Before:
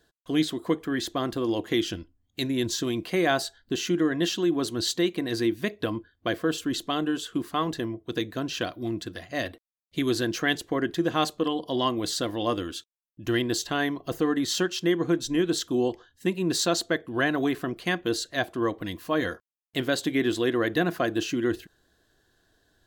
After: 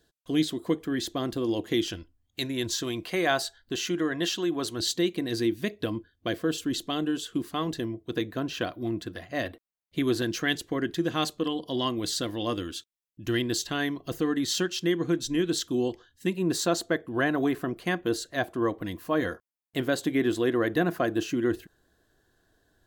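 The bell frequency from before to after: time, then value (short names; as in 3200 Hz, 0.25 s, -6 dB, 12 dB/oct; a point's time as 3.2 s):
bell -5.5 dB 1.9 oct
1200 Hz
from 1.88 s 220 Hz
from 4.8 s 1100 Hz
from 8.1 s 6100 Hz
from 10.22 s 790 Hz
from 16.37 s 3900 Hz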